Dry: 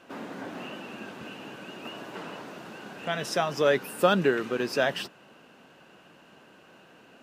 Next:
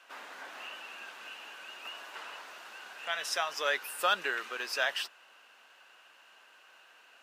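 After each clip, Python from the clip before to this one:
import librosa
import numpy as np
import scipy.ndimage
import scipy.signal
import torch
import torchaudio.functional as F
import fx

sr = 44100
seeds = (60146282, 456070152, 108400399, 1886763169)

y = scipy.signal.sosfilt(scipy.signal.butter(2, 1100.0, 'highpass', fs=sr, output='sos'), x)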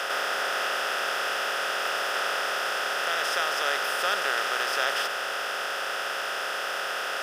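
y = fx.bin_compress(x, sr, power=0.2)
y = y * librosa.db_to_amplitude(-3.5)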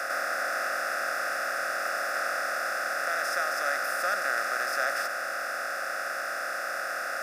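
y = fx.fixed_phaser(x, sr, hz=630.0, stages=8)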